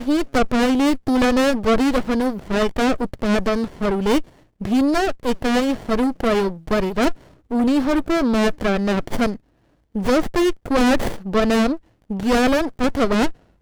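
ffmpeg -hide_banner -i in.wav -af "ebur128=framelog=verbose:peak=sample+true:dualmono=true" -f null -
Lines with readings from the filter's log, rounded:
Integrated loudness:
  I:         -17.0 LUFS
  Threshold: -27.2 LUFS
Loudness range:
  LRA:         1.9 LU
  Threshold: -37.5 LUFS
  LRA low:   -18.1 LUFS
  LRA high:  -16.2 LUFS
Sample peak:
  Peak:      -12.4 dBFS
True peak:
  Peak:      -12.2 dBFS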